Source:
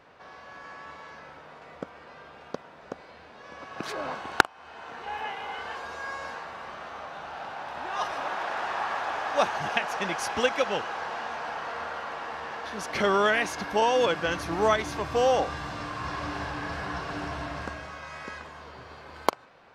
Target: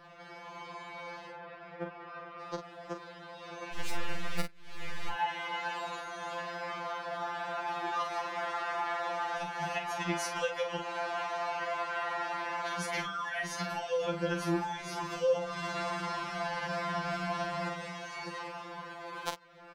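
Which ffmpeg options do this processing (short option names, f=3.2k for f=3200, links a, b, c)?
-filter_complex "[0:a]asettb=1/sr,asplit=3[a][b][c];[a]atrim=end=1.314[d];[b]atrim=start=1.31:end=2.4,asetpts=PTS-STARTPTS,afade=t=in:d=0.004:c=qsin,afade=t=out:st=1.086:d=0.004:c=qsin,lowpass=2.8k[e];[c]atrim=start=2.396[f];[d][e]acrossfade=d=0.004:c1=hsin:c2=qsin[g];[g][f]acrossfade=d=0.004:c1=qsin:c2=hsin,acrossover=split=130[h][i];[i]acompressor=threshold=-33dB:ratio=10[j];[h][j]amix=inputs=2:normalize=0,asettb=1/sr,asplit=3[k][l][m];[k]atrim=end=3.734[n];[l]atrim=start=3.73:end=5.1,asetpts=PTS-STARTPTS,afade=t=in:d=0.004:c=qsin,afade=t=out:st=1.366:d=0.004:c=qsin,aeval=exprs='abs(val(0))':c=same[o];[m]atrim=start=5.096[p];[n][o]acrossfade=d=0.004:c1=hsin:c2=qsin[q];[q][p]acrossfade=d=0.004:c1=qsin:c2=hsin,asplit=2[r][s];[s]adelay=44,volume=-7.5dB[t];[r][t]amix=inputs=2:normalize=0,afftfilt=real='re*2.83*eq(mod(b,8),0)':imag='im*2.83*eq(mod(b,8),0)':win_size=2048:overlap=0.75,volume=4dB"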